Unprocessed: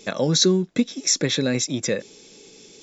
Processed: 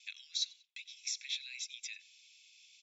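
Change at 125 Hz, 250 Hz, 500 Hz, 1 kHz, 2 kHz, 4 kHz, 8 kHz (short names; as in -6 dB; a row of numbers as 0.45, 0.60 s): under -40 dB, under -40 dB, under -40 dB, under -40 dB, -15.0 dB, -14.0 dB, n/a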